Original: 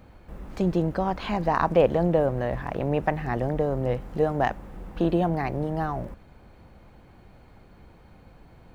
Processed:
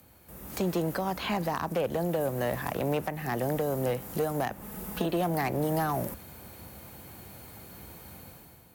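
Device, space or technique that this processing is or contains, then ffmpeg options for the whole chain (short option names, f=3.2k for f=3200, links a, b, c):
FM broadcast chain: -filter_complex "[0:a]highpass=f=65:w=0.5412,highpass=f=65:w=1.3066,dynaudnorm=f=110:g=9:m=11dB,acrossover=split=140|400|3600[a][b][c][d];[a]acompressor=threshold=-34dB:ratio=4[e];[b]acompressor=threshold=-22dB:ratio=4[f];[c]acompressor=threshold=-18dB:ratio=4[g];[d]acompressor=threshold=-51dB:ratio=4[h];[e][f][g][h]amix=inputs=4:normalize=0,aemphasis=mode=production:type=50fm,alimiter=limit=-11.5dB:level=0:latency=1:release=397,asoftclip=type=hard:threshold=-15dB,lowpass=f=15k:w=0.5412,lowpass=f=15k:w=1.3066,aemphasis=mode=production:type=50fm,asettb=1/sr,asplit=3[i][j][k];[i]atrim=end=4.614[l];[j]atrim=start=4.61:end=5.06,asetpts=PTS-STARTPTS,afade=t=in:d=0.004:c=qsin,afade=t=out:st=0.446:d=0.004:c=qsin,aecho=1:1:4.7:0.65,atrim=end_sample=19845[m];[k]atrim=start=5.056[n];[l][m]acrossfade=d=0.004:c1=hsin:c2=qsin[o];[o][n]acrossfade=d=0.004:c1=qsin:c2=hsin,volume=-6.5dB"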